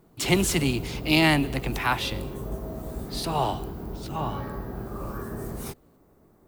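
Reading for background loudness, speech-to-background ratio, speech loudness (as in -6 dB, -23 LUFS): -35.5 LUFS, 10.0 dB, -25.5 LUFS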